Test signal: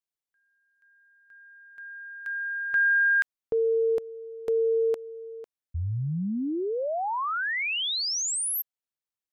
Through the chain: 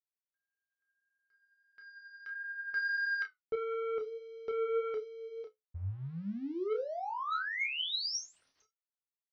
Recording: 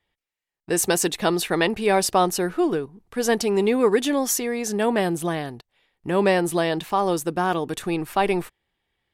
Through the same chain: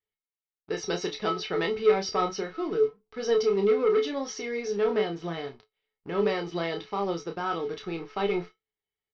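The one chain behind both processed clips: resonator 430 Hz, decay 0.19 s, harmonics odd, mix 90%; sample leveller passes 2; Chebyshev low-pass 5800 Hz, order 6; flange 1.6 Hz, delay 9.3 ms, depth 2.2 ms, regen +61%; doubler 30 ms -7 dB; gain +5.5 dB

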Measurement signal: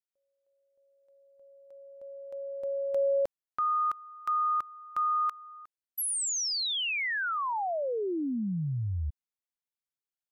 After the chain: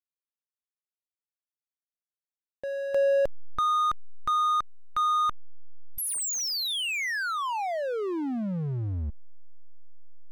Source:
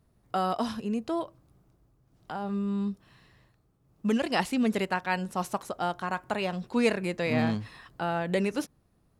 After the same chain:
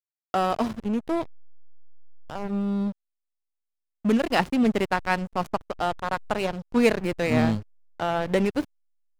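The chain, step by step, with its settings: backlash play -28 dBFS; gain +5.5 dB

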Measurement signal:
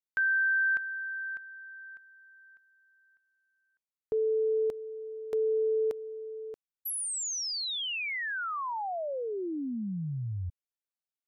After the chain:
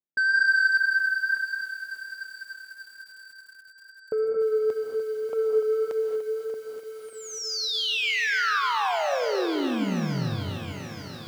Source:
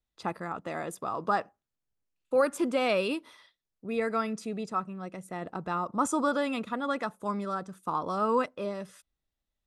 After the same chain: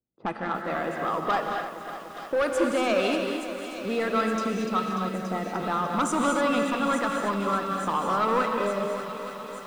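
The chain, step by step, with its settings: LPF 8900 Hz 12 dB/oct; low-pass opened by the level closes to 370 Hz, open at -28 dBFS; HPF 150 Hz 12 dB/oct; dynamic EQ 1500 Hz, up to +4 dB, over -44 dBFS, Q 2.2; in parallel at +3 dB: compressor 6:1, threshold -37 dBFS; on the sum: soft clip -20.5 dBFS; wow and flutter 1.9 Hz 23 cents; on a send: thin delay 0.869 s, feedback 69%, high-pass 3200 Hz, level -9 dB; on the sum: non-linear reverb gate 0.26 s rising, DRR 3 dB; lo-fi delay 0.294 s, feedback 80%, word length 8-bit, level -11 dB; gain +1 dB

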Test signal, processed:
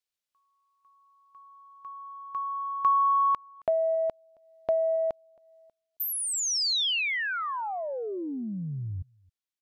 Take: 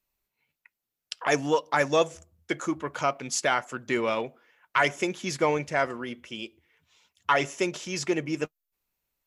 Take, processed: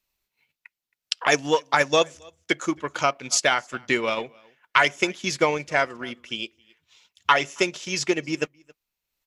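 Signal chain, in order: on a send: echo 0.27 s -23 dB; on the sum: transient shaper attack +4 dB, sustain -5 dB; bell 3900 Hz +7 dB 2.2 oct

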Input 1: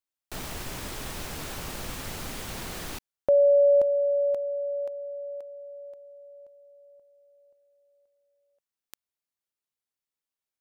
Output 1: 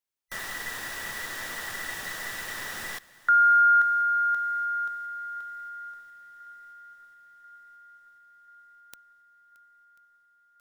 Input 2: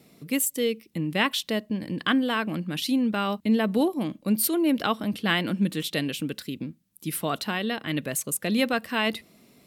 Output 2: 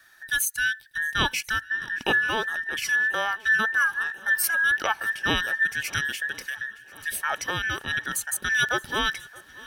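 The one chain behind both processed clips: band inversion scrambler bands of 2000 Hz; swung echo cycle 1.039 s, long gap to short 1.5:1, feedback 60%, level -23 dB

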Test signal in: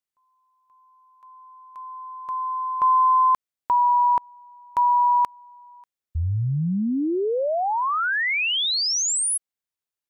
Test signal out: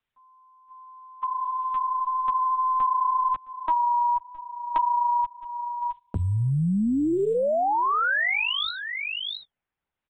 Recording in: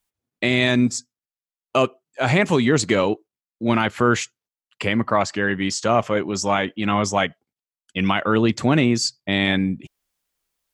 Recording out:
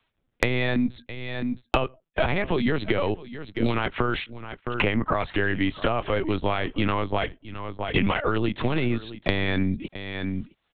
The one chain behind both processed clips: compressor 8:1, threshold -19 dBFS; LPC vocoder at 8 kHz pitch kept; on a send: echo 0.664 s -22 dB; on the sum: gate -52 dBFS, range -19 dB; three-band squash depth 100%

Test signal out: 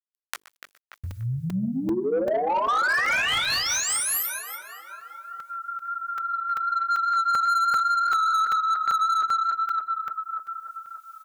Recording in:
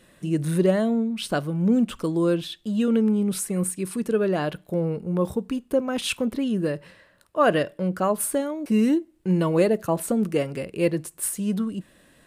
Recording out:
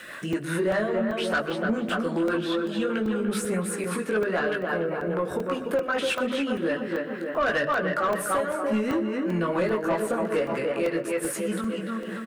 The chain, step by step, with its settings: chorus voices 6, 0.59 Hz, delay 19 ms, depth 5 ms; on a send: tape echo 0.292 s, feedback 54%, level -4.5 dB, low-pass 2300 Hz; on the sum: rotary speaker horn 5 Hz; bell 1500 Hz +10 dB 1.1 oct; notches 50/100/150/200/250/300/350/400/450 Hz; overdrive pedal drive 23 dB, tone 1500 Hz, clips at -3.5 dBFS; outdoor echo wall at 21 m, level -16 dB; bit-crush 12-bit; compressor 2:1, threshold -34 dBFS; high shelf 5700 Hz +8 dB; crackling interface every 0.39 s, samples 128, zero, from 0.33; mismatched tape noise reduction encoder only; gain +2 dB

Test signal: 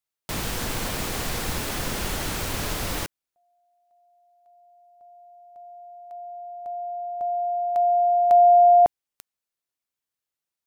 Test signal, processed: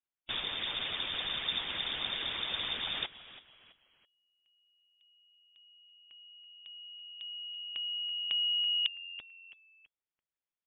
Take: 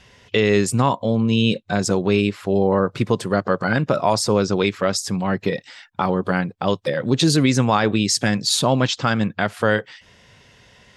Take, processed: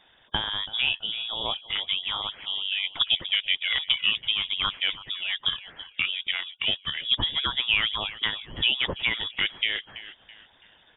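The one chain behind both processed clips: frequency-shifting echo 0.33 s, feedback 37%, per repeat +88 Hz, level -15 dB; harmonic-percussive split harmonic -14 dB; inverted band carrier 3600 Hz; gain -3 dB

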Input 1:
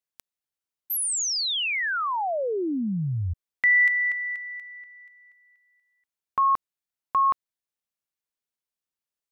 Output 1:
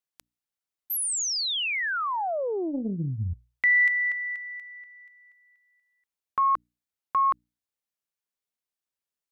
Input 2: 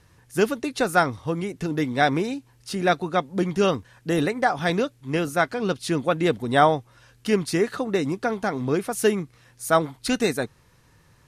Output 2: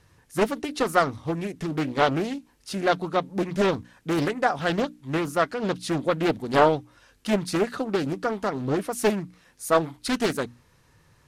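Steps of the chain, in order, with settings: notches 60/120/180/240/300 Hz; Doppler distortion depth 0.58 ms; gain -1.5 dB

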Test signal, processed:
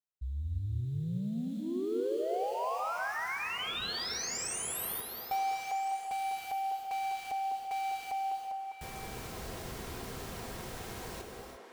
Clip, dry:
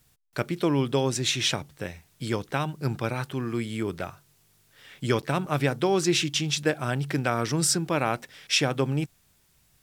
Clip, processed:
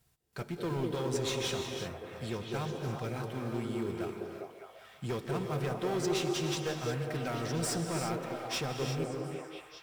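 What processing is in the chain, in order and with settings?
in parallel at -9 dB: sample-rate reducer 3800 Hz, jitter 20%; on the sum: notch comb 290 Hz; soft clip -21 dBFS; delay with a stepping band-pass 0.201 s, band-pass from 370 Hz, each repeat 0.7 oct, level 0 dB; non-linear reverb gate 0.38 s rising, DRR 5 dB; gain -8 dB

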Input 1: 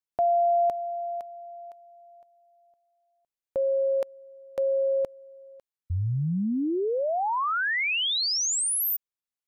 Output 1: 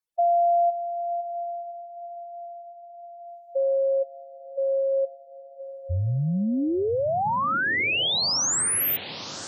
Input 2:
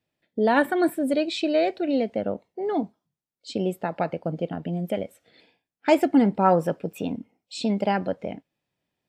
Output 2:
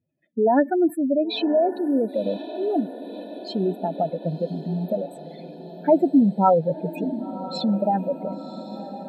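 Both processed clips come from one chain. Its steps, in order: spectral contrast raised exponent 2.8; diffused feedback echo 1.053 s, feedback 62%, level -14 dB; gain +2.5 dB

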